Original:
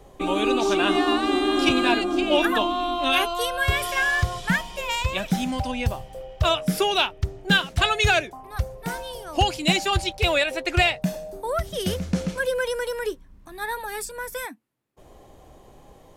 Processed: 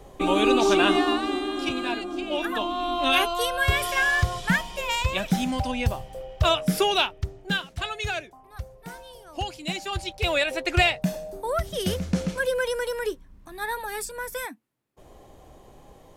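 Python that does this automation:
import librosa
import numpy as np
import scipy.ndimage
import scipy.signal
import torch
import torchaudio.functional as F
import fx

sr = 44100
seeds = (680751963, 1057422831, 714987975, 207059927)

y = fx.gain(x, sr, db=fx.line((0.81, 2.0), (1.55, -8.0), (2.39, -8.0), (3.0, 0.0), (6.91, 0.0), (7.77, -10.0), (9.74, -10.0), (10.51, -0.5)))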